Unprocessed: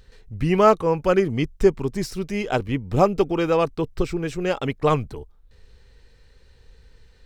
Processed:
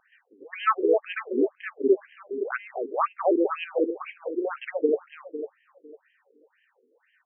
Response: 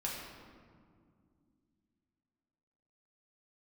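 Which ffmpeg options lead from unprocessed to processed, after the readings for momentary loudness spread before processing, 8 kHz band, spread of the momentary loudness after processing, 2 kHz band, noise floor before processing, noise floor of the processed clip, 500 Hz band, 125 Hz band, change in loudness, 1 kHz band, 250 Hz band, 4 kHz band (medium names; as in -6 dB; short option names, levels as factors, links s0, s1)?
10 LU, under -35 dB, 13 LU, -3.0 dB, -54 dBFS, -70 dBFS, -4.5 dB, under -40 dB, -5.0 dB, -5.0 dB, -5.5 dB, -9.0 dB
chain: -filter_complex "[0:a]asplit=2[s0][s1];[s1]adelay=252,lowpass=f=1000:p=1,volume=0.596,asplit=2[s2][s3];[s3]adelay=252,lowpass=f=1000:p=1,volume=0.51,asplit=2[s4][s5];[s5]adelay=252,lowpass=f=1000:p=1,volume=0.51,asplit=2[s6][s7];[s7]adelay=252,lowpass=f=1000:p=1,volume=0.51,asplit=2[s8][s9];[s9]adelay=252,lowpass=f=1000:p=1,volume=0.51,asplit=2[s10][s11];[s11]adelay=252,lowpass=f=1000:p=1,volume=0.51,asplit=2[s12][s13];[s13]adelay=252,lowpass=f=1000:p=1,volume=0.51[s14];[s0][s2][s4][s6][s8][s10][s12][s14]amix=inputs=8:normalize=0,afftfilt=real='re*between(b*sr/1024,330*pow(2300/330,0.5+0.5*sin(2*PI*2*pts/sr))/1.41,330*pow(2300/330,0.5+0.5*sin(2*PI*2*pts/sr))*1.41)':imag='im*between(b*sr/1024,330*pow(2300/330,0.5+0.5*sin(2*PI*2*pts/sr))/1.41,330*pow(2300/330,0.5+0.5*sin(2*PI*2*pts/sr))*1.41)':win_size=1024:overlap=0.75,volume=1.19"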